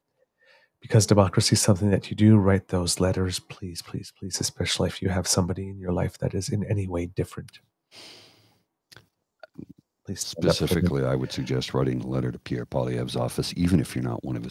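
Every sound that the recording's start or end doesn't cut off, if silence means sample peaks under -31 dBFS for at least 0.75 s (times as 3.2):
0.86–7.49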